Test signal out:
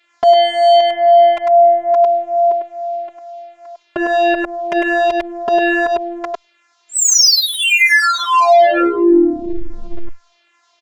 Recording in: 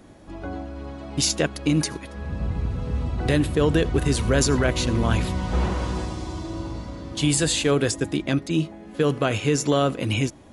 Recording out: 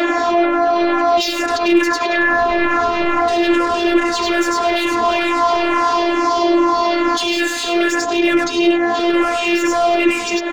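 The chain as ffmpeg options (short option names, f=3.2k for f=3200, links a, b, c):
-filter_complex "[0:a]aresample=16000,aresample=44100,acontrast=31,bass=f=250:g=-12,treble=f=4k:g=-7,asplit=2[a][b];[b]highpass=f=720:p=1,volume=26dB,asoftclip=type=tanh:threshold=-4dB[c];[a][c]amix=inputs=2:normalize=0,lowpass=f=3.1k:p=1,volume=-6dB,equalizer=f=140:t=o:w=1.1:g=-3.5,aecho=1:1:100:0.596,afftfilt=real='hypot(re,im)*cos(PI*b)':imag='0':win_size=512:overlap=0.75,acompressor=threshold=-29dB:ratio=8,alimiter=level_in=23.5dB:limit=-1dB:release=50:level=0:latency=1,asplit=2[d][e];[e]adelay=2.9,afreqshift=-2.3[f];[d][f]amix=inputs=2:normalize=1"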